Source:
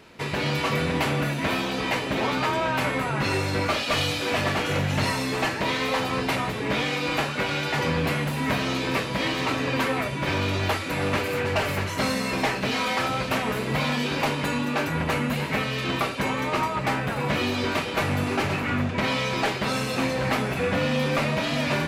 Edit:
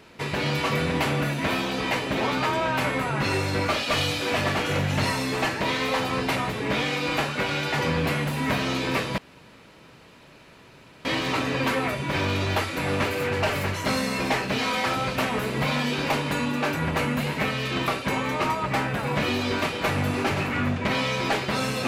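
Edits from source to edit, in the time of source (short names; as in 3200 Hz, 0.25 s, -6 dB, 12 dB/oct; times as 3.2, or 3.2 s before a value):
9.18 insert room tone 1.87 s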